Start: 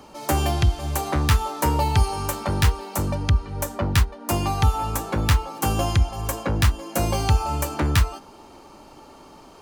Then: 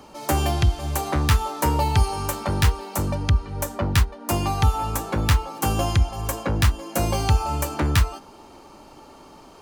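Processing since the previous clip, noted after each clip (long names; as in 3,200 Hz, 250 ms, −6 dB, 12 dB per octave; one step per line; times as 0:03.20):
no processing that can be heard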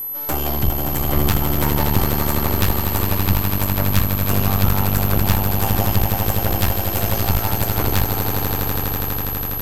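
echo that builds up and dies away 82 ms, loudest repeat 8, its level −8.5 dB
half-wave rectification
steady tone 12,000 Hz −26 dBFS
level +1.5 dB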